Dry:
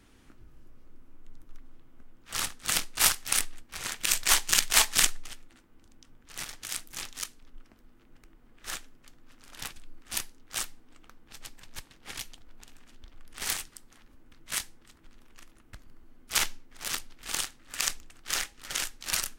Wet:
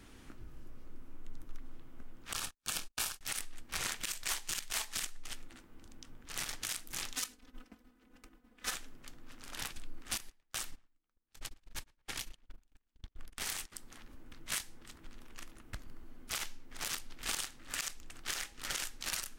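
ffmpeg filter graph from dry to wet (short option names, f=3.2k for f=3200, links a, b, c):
-filter_complex "[0:a]asettb=1/sr,asplit=3[a][b][c];[a]atrim=end=2.334[d];[b]atrim=start=2.33:end=3.21,asetpts=PTS-STARTPTS,afade=t=in:d=0.004:c=qsin,afade=t=out:st=0.876:d=0.004:c=qsin,agate=range=-57dB:threshold=-37dB:ratio=16:release=100:detection=peak,asuperstop=centerf=2000:order=4:qfactor=7.7,acompressor=mode=upward:threshold=-38dB:ratio=2.5:attack=3.2:release=140:knee=2.83:detection=peak[e];[c]atrim=start=3.206[f];[d][e]acrossfade=d=0.004:c1=hsin:c2=qsin[g];[g][f]acrossfade=d=0.004:c1=qsin:c2=hsin,asettb=1/sr,asplit=3[h][i][j];[h]atrim=end=7.154[k];[i]atrim=start=7.15:end=8.73,asetpts=PTS-STARTPTS,afade=t=in:d=0.004:c=qsin,afade=t=out:st=1.576:d=0.004:c=qsin,highpass=f=79:p=1,agate=range=-33dB:threshold=-56dB:ratio=3:release=100:detection=peak,aecho=1:1:4:0.99,atrim=end_sample=69678[l];[j]atrim=start=8.726[m];[k][l]acrossfade=d=0.004:c1=hsin:c2=qsin[n];[n][m]acrossfade=d=0.004:c1=qsin:c2=hsin,asettb=1/sr,asplit=3[o][p][q];[o]atrim=end=10.174[r];[p]atrim=start=10.17:end=13.72,asetpts=PTS-STARTPTS,afade=t=in:d=0.004:c=qsin,afade=t=out:st=3.546:d=0.004:c=qsin,agate=range=-38dB:threshold=-44dB:ratio=16:release=100:detection=peak,acompressor=threshold=-40dB:ratio=3:attack=3.2:release=140:knee=1:detection=peak,asplit=2[s][t];[t]adelay=113,lowpass=f=2.2k:p=1,volume=-24dB,asplit=2[u][v];[v]adelay=113,lowpass=f=2.2k:p=1,volume=0.35[w];[s][u][w]amix=inputs=3:normalize=0,atrim=end_sample=156555[x];[q]atrim=start=13.716[y];[r][x]acrossfade=d=0.004:c1=hsin:c2=qsin[z];[z][y]acrossfade=d=0.004:c1=qsin:c2=hsin,acompressor=threshold=-35dB:ratio=6,alimiter=level_in=0.5dB:limit=-24dB:level=0:latency=1:release=128,volume=-0.5dB,volume=3.5dB"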